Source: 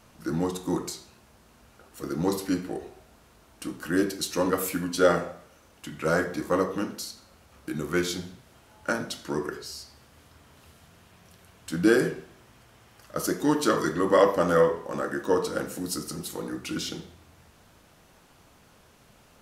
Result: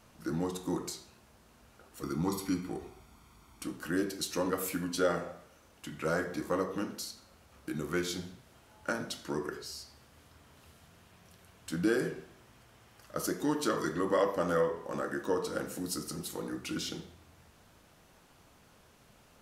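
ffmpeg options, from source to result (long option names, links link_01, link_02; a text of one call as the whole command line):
ffmpeg -i in.wav -filter_complex "[0:a]asettb=1/sr,asplit=3[link_01][link_02][link_03];[link_01]atrim=end=2.034[link_04];[link_02]atrim=start=2.03:end=3.64,asetpts=PTS-STARTPTS,afade=type=in:duration=0.004:curve=qsin,afade=type=out:start_time=1.606:duration=0.004:curve=qsin,aecho=1:1:0.9:0.6,atrim=end_sample=71001[link_05];[link_03]atrim=start=3.636[link_06];[link_04][link_05]acrossfade=duration=0.004:curve1=hsin:curve2=qsin[link_07];[link_07][link_06]acrossfade=duration=0.004:curve1=qsin:curve2=hsin,acompressor=threshold=-28dB:ratio=1.5,volume=-4dB" out.wav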